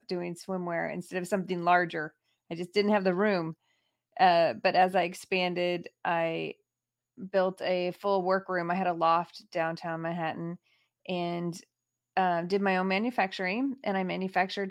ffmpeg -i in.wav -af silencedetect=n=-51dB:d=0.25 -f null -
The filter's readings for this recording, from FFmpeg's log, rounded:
silence_start: 2.10
silence_end: 2.50 | silence_duration: 0.40
silence_start: 3.53
silence_end: 4.17 | silence_duration: 0.63
silence_start: 6.54
silence_end: 7.18 | silence_duration: 0.64
silence_start: 10.56
silence_end: 11.06 | silence_duration: 0.50
silence_start: 11.63
silence_end: 12.17 | silence_duration: 0.53